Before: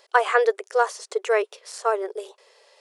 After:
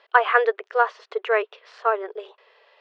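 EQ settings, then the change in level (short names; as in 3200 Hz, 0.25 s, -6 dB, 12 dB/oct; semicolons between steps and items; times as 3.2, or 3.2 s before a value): speaker cabinet 260–3100 Hz, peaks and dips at 380 Hz -6 dB, 540 Hz -7 dB, 830 Hz -4 dB, 2200 Hz -3 dB; +4.0 dB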